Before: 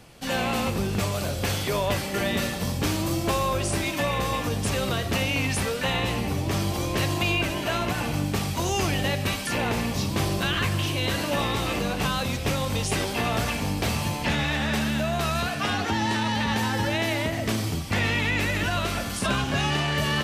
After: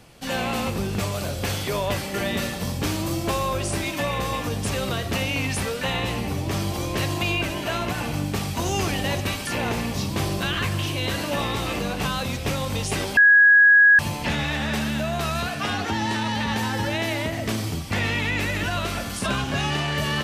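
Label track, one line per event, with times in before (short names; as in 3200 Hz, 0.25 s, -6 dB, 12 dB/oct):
8.030000	8.670000	echo throw 0.53 s, feedback 45%, level -6 dB
13.170000	13.990000	bleep 1660 Hz -10 dBFS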